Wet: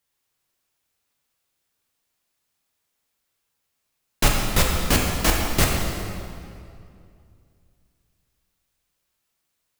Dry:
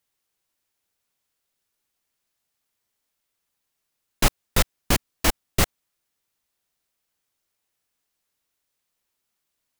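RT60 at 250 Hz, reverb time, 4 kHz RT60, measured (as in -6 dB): 2.7 s, 2.4 s, 1.8 s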